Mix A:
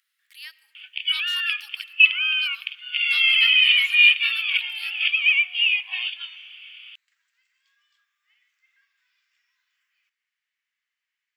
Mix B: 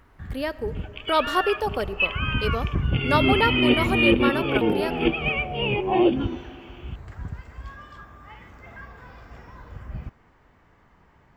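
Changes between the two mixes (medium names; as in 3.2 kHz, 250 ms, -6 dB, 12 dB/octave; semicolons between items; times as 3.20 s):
first sound +11.5 dB; second sound -10.5 dB; master: remove inverse Chebyshev high-pass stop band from 380 Hz, stop band 80 dB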